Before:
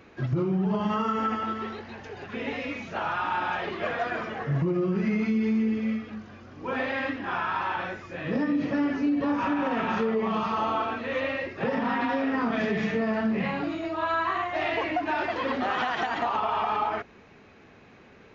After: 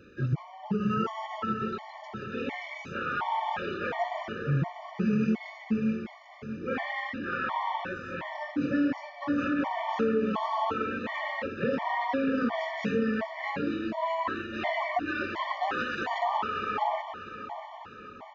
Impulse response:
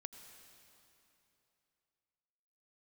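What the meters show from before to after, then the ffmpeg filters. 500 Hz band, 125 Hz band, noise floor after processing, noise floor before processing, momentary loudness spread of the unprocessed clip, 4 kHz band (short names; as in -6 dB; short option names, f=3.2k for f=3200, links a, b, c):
-3.0 dB, -2.0 dB, -47 dBFS, -53 dBFS, 7 LU, -3.0 dB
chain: -af "aecho=1:1:644|1288|1932|2576|3220|3864:0.282|0.149|0.0792|0.042|0.0222|0.0118,afftfilt=real='re*gt(sin(2*PI*1.4*pts/sr)*(1-2*mod(floor(b*sr/1024/590),2)),0)':imag='im*gt(sin(2*PI*1.4*pts/sr)*(1-2*mod(floor(b*sr/1024/590),2)),0)':win_size=1024:overlap=0.75"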